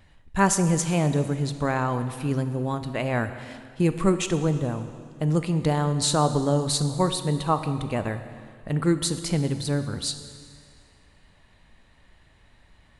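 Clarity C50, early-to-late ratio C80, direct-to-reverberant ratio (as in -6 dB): 10.5 dB, 11.5 dB, 9.5 dB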